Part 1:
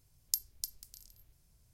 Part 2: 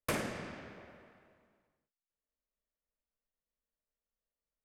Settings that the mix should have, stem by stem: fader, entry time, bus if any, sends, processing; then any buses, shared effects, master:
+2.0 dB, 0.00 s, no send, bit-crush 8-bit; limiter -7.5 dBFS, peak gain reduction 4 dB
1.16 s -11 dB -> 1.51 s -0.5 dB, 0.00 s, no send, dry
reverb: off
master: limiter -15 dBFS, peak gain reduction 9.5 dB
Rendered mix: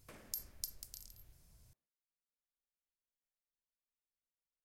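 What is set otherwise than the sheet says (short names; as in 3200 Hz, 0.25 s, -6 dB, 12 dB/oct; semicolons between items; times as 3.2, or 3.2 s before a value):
stem 1: missing bit-crush 8-bit; stem 2 -11.0 dB -> -23.0 dB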